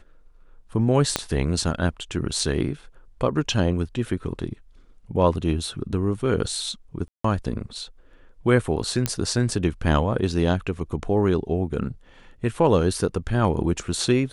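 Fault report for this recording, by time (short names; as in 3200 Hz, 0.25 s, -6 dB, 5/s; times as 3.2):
1.16 pop -5 dBFS
7.08–7.24 gap 0.164 s
9.06 pop -7 dBFS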